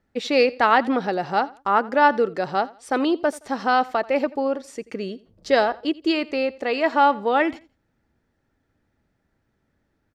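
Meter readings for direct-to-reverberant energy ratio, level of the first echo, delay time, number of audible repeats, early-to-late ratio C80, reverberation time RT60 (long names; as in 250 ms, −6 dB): no reverb audible, −21.0 dB, 85 ms, 2, no reverb audible, no reverb audible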